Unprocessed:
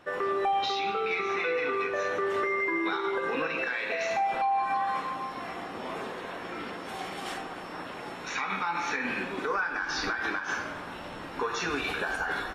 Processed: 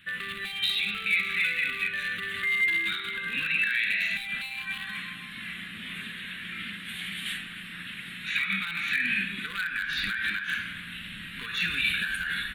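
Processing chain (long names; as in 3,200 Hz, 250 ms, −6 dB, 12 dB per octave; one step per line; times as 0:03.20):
wave folding −23 dBFS
drawn EQ curve 140 Hz 0 dB, 200 Hz +5 dB, 290 Hz −13 dB, 450 Hz −23 dB, 850 Hz −29 dB, 1,700 Hz +5 dB, 2,600 Hz +9 dB, 3,800 Hz +9 dB, 5,400 Hz −17 dB, 9,300 Hz +8 dB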